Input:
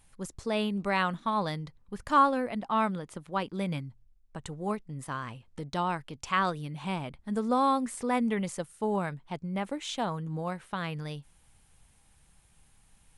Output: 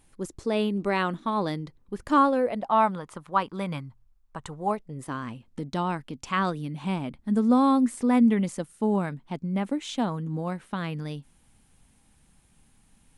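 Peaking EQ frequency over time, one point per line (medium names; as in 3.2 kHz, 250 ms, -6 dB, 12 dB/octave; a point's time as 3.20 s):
peaking EQ +10.5 dB 0.95 oct
2.20 s 330 Hz
3.04 s 1.1 kHz
4.54 s 1.1 kHz
5.20 s 250 Hz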